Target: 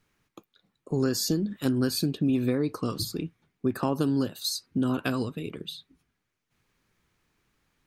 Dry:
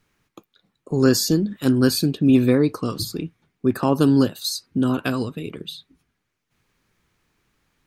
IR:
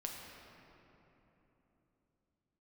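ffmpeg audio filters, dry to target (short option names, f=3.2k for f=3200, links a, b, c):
-af "acompressor=threshold=-17dB:ratio=10,volume=-4dB"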